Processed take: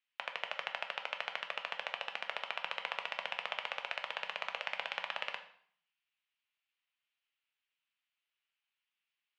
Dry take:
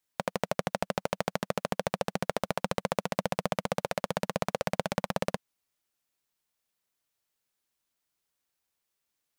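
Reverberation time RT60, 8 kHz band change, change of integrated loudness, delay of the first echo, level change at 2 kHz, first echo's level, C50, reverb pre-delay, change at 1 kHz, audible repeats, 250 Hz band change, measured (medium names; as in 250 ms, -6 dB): 0.60 s, -20.0 dB, -6.5 dB, no echo, +0.5 dB, no echo, 11.5 dB, 6 ms, -8.0 dB, no echo, -32.5 dB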